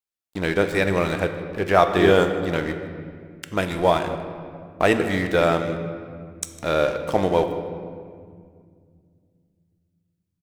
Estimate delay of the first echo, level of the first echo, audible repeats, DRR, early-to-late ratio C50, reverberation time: 155 ms, −18.0 dB, 1, 6.5 dB, 8.5 dB, 2.1 s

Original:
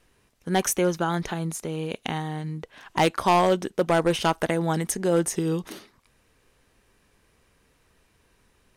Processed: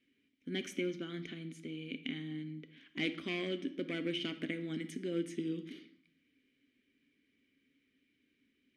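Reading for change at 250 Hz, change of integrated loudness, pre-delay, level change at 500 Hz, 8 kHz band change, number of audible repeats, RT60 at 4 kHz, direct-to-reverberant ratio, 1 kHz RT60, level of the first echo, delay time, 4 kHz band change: −10.5 dB, −14.5 dB, 3 ms, −17.0 dB, −25.0 dB, no echo audible, 0.65 s, 9.0 dB, 0.75 s, no echo audible, no echo audible, −8.5 dB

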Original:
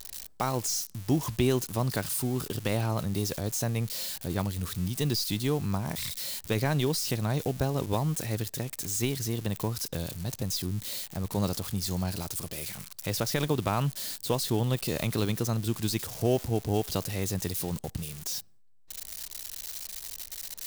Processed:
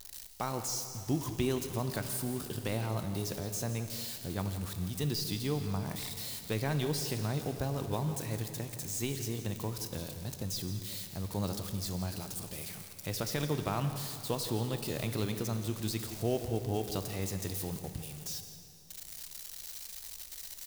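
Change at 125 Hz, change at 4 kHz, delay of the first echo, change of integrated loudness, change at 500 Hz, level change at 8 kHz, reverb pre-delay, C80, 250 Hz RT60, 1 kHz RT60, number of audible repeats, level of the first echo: −5.0 dB, −5.0 dB, 168 ms, −5.0 dB, −5.0 dB, −5.5 dB, 5 ms, 8.0 dB, 2.9 s, 2.9 s, 1, −14.0 dB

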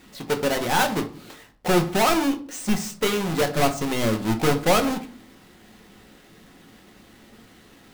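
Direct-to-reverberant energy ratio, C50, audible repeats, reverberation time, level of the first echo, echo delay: 4.0 dB, 14.0 dB, no echo audible, 0.45 s, no echo audible, no echo audible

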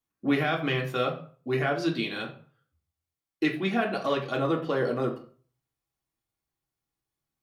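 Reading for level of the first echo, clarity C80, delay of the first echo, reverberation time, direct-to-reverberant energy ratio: no echo audible, 15.0 dB, no echo audible, 0.45 s, −1.0 dB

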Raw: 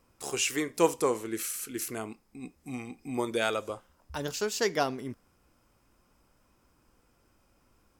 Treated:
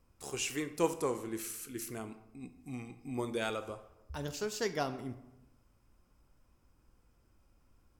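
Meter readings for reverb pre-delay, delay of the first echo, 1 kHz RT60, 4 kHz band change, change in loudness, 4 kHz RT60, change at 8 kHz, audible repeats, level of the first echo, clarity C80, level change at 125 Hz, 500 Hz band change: 19 ms, no echo audible, 0.90 s, −7.0 dB, −6.0 dB, 0.55 s, −7.5 dB, no echo audible, no echo audible, 15.0 dB, −1.0 dB, −6.5 dB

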